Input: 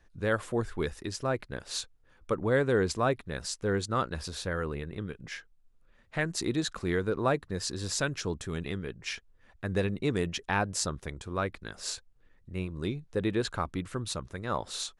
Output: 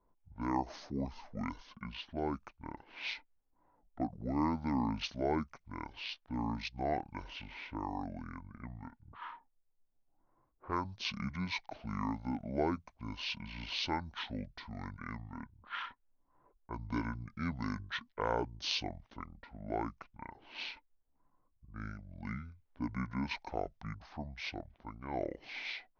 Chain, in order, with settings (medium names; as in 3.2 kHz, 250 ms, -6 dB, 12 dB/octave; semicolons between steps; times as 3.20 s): level-controlled noise filter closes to 1.4 kHz, open at -27.5 dBFS; bass shelf 400 Hz -8.5 dB; speed mistake 78 rpm record played at 45 rpm; trim -4 dB